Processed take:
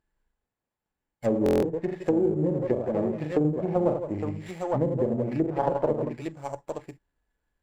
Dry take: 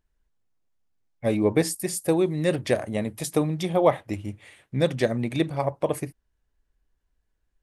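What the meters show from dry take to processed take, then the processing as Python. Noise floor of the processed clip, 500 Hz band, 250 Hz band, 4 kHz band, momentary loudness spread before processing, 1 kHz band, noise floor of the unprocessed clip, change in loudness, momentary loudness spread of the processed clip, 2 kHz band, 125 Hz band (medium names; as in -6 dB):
under -85 dBFS, -0.5 dB, 0.0 dB, under -10 dB, 11 LU, -1.5 dB, -76 dBFS, -1.5 dB, 12 LU, -9.5 dB, -2.0 dB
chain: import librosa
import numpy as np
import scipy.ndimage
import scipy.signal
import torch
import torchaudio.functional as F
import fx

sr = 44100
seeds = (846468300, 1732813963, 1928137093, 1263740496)

y = fx.echo_multitap(x, sr, ms=(40, 76, 80, 166, 168, 860), db=(-5.5, -19.5, -5.5, -11.5, -12.5, -9.0))
y = fx.env_lowpass_down(y, sr, base_hz=370.0, full_db=-17.0)
y = np.repeat(scipy.signal.resample_poly(y, 1, 6), 6)[:len(y)]
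y = fx.low_shelf(y, sr, hz=120.0, db=-8.5)
y = fx.env_lowpass_down(y, sr, base_hz=1400.0, full_db=-23.5)
y = fx.small_body(y, sr, hz=(860.0, 1700.0), ring_ms=90, db=9)
y = fx.buffer_glitch(y, sr, at_s=(1.44,), block=1024, repeats=7)
y = fx.running_max(y, sr, window=5)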